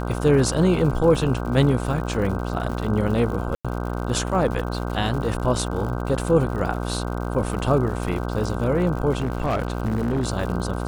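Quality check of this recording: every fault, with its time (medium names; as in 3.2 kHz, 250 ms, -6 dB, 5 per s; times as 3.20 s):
buzz 60 Hz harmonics 26 -27 dBFS
crackle 130 per s -31 dBFS
3.55–3.65 s: dropout 96 ms
9.17–10.25 s: clipped -18 dBFS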